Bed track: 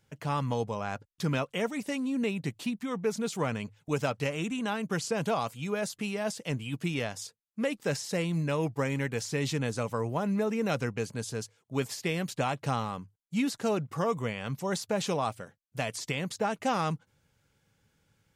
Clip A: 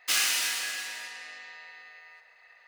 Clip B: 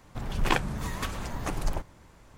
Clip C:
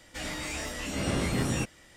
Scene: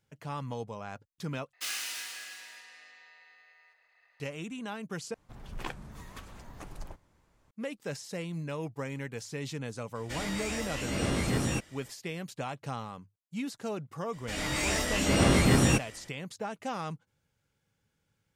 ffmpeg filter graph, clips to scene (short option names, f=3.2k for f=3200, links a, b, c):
-filter_complex "[3:a]asplit=2[a][b];[0:a]volume=-7dB[c];[b]dynaudnorm=f=140:g=5:m=7dB[d];[c]asplit=3[e][f][g];[e]atrim=end=1.534[h];[1:a]atrim=end=2.67,asetpts=PTS-STARTPTS,volume=-10dB[i];[f]atrim=start=4.196:end=5.144[j];[2:a]atrim=end=2.37,asetpts=PTS-STARTPTS,volume=-13.5dB[k];[g]atrim=start=7.506[l];[a]atrim=end=1.96,asetpts=PTS-STARTPTS,volume=-1dB,afade=t=in:d=0.004:c=hsin,afade=t=out:st=1.956:d=0.004:c=hsin,adelay=9950[m];[d]atrim=end=1.96,asetpts=PTS-STARTPTS,volume=-1dB,afade=t=in:d=0.004:c=hsin,afade=t=out:st=1.956:d=0.004:c=hsin,adelay=14130[n];[h][i]acrossfade=d=0.004:c1=hsin:c2=hsin[o];[o][j]acrossfade=d=0.004:c1=hsin:c2=hsin[p];[p][k]acrossfade=d=0.004:c1=hsin:c2=hsin[q];[q][l]acrossfade=d=0.004:c1=hsin:c2=hsin[r];[r][m][n]amix=inputs=3:normalize=0"